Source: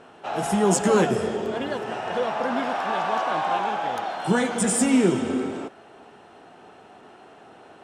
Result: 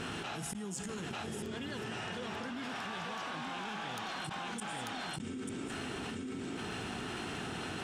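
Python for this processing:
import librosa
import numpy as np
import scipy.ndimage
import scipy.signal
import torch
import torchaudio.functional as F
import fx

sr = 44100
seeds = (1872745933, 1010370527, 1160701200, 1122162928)

y = fx.tone_stack(x, sr, knobs='6-0-2')
y = fx.gate_flip(y, sr, shuts_db=-34.0, range_db=-33)
y = y + 10.0 ** (-7.5 / 20.0) * np.pad(y, (int(891 * sr / 1000.0), 0))[:len(y)]
y = fx.env_flatten(y, sr, amount_pct=100)
y = y * librosa.db_to_amplitude(2.0)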